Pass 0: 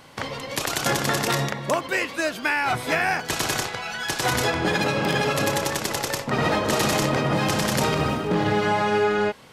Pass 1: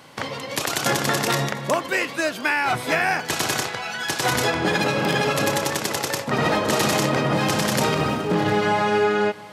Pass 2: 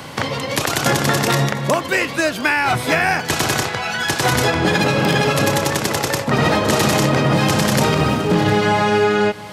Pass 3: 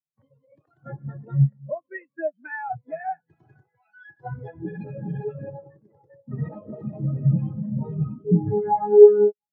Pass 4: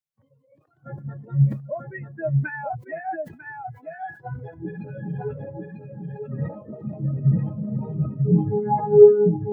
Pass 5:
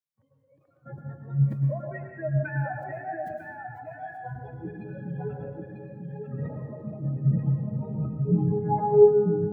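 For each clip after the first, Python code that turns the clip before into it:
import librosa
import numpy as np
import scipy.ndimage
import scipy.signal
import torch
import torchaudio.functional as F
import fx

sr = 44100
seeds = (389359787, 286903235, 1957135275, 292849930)

y1 = scipy.signal.sosfilt(scipy.signal.butter(2, 100.0, 'highpass', fs=sr, output='sos'), x)
y1 = y1 + 10.0 ** (-21.0 / 20.0) * np.pad(y1, (int(706 * sr / 1000.0), 0))[:len(y1)]
y1 = y1 * 10.0 ** (1.5 / 20.0)
y2 = fx.low_shelf(y1, sr, hz=110.0, db=11.5)
y2 = fx.band_squash(y2, sr, depth_pct=40)
y2 = y2 * 10.0 ** (3.5 / 20.0)
y3 = fx.spectral_expand(y2, sr, expansion=4.0)
y4 = fx.low_shelf(y3, sr, hz=64.0, db=6.5)
y4 = y4 + 10.0 ** (-4.0 / 20.0) * np.pad(y4, (int(945 * sr / 1000.0), 0))[:len(y4)]
y4 = fx.sustainer(y4, sr, db_per_s=140.0)
y4 = y4 * 10.0 ** (-1.0 / 20.0)
y5 = fx.rev_plate(y4, sr, seeds[0], rt60_s=1.1, hf_ratio=0.65, predelay_ms=95, drr_db=3.0)
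y5 = y5 * 10.0 ** (-5.0 / 20.0)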